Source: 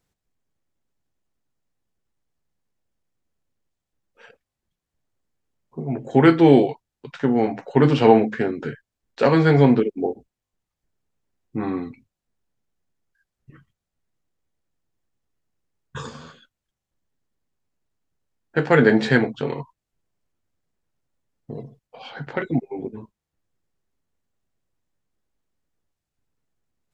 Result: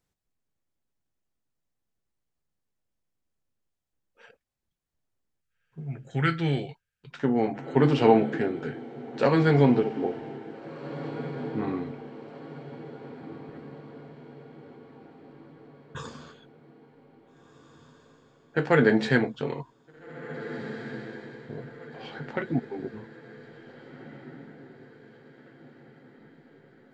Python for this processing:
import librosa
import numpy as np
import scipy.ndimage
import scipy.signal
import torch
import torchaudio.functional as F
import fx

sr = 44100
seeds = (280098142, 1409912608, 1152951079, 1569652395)

y = fx.echo_diffused(x, sr, ms=1779, feedback_pct=48, wet_db=-13.5)
y = fx.spec_box(y, sr, start_s=5.42, length_s=1.69, low_hz=210.0, high_hz=1200.0, gain_db=-13)
y = y * 10.0 ** (-5.0 / 20.0)